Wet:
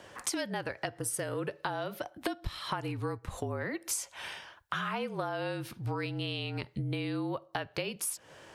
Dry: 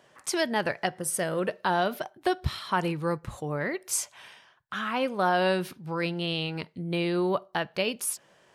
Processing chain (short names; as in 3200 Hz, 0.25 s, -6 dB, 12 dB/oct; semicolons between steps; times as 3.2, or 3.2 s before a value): frequency shift -39 Hz; compressor 16:1, threshold -39 dBFS, peak gain reduction 20 dB; gain +8 dB